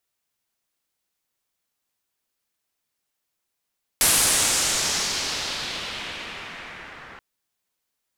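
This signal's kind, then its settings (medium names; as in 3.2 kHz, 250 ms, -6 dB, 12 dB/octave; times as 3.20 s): swept filtered noise white, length 3.18 s lowpass, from 11 kHz, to 1.6 kHz, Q 1.6, exponential, gain ramp -18 dB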